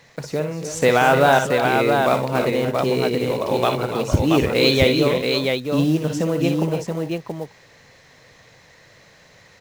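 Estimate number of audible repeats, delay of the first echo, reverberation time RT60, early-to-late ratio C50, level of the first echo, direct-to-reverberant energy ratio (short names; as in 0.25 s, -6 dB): 4, 58 ms, none, none, -7.5 dB, none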